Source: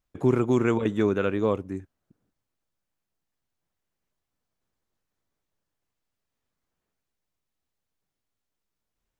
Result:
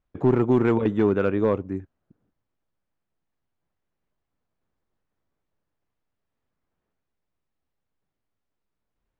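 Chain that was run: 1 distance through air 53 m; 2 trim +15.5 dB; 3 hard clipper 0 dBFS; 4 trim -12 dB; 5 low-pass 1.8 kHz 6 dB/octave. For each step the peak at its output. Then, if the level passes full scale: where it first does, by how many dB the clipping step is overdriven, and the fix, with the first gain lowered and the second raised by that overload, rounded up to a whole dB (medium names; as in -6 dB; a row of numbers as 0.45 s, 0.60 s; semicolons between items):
-10.5 dBFS, +5.0 dBFS, 0.0 dBFS, -12.0 dBFS, -12.0 dBFS; step 2, 5.0 dB; step 2 +10.5 dB, step 4 -7 dB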